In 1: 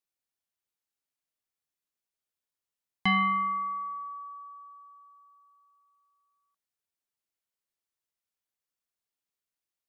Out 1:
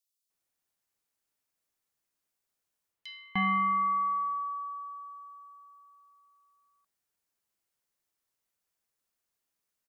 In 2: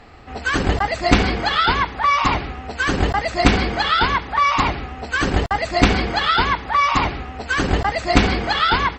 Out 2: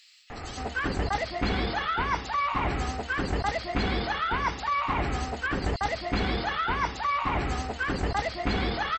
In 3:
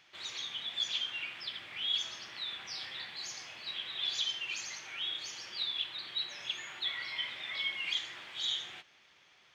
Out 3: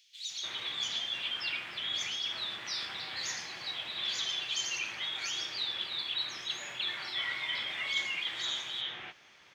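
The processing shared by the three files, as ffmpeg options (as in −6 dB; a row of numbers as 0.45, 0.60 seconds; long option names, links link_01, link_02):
-filter_complex "[0:a]areverse,acompressor=threshold=-32dB:ratio=6,areverse,acrossover=split=3300[link_01][link_02];[link_01]adelay=300[link_03];[link_03][link_02]amix=inputs=2:normalize=0,volume=6dB"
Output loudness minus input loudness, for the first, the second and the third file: −1.0, −10.0, +2.0 LU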